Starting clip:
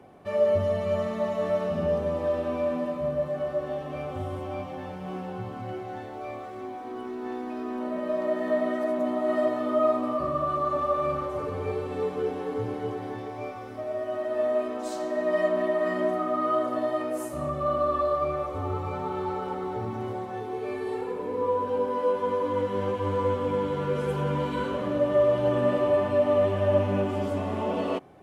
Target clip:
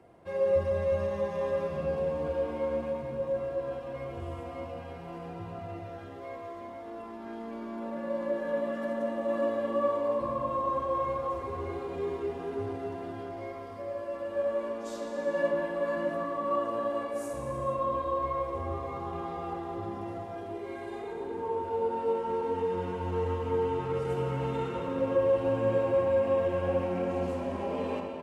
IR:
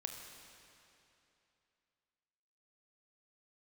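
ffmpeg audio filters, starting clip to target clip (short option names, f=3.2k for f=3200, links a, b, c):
-filter_complex "[0:a]asetrate=40440,aresample=44100,atempo=1.09051,equalizer=f=220:t=o:w=0.62:g=-5[a];[1:a]atrim=start_sample=2205,afade=t=out:st=0.35:d=0.01,atrim=end_sample=15876,asetrate=26901,aresample=44100[b];[a][b]afir=irnorm=-1:irlink=0,volume=-4.5dB"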